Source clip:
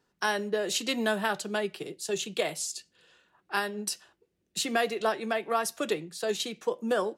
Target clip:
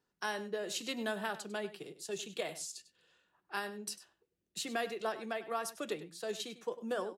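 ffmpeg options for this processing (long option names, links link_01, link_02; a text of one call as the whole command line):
ffmpeg -i in.wav -filter_complex "[0:a]asplit=2[link_01][link_02];[link_02]adelay=99.13,volume=-14dB,highshelf=frequency=4000:gain=-2.23[link_03];[link_01][link_03]amix=inputs=2:normalize=0,volume=-9dB" out.wav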